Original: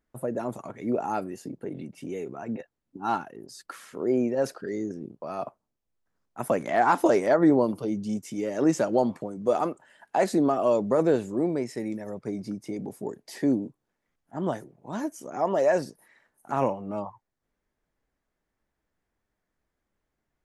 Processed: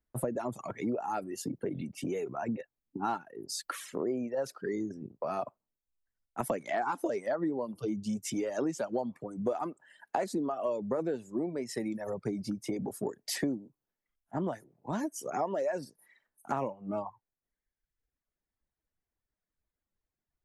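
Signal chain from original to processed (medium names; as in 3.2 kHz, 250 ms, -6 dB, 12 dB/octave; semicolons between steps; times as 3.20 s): reverb removal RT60 1.1 s; compression 8:1, threshold -36 dBFS, peak gain reduction 19.5 dB; three bands expanded up and down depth 40%; trim +6 dB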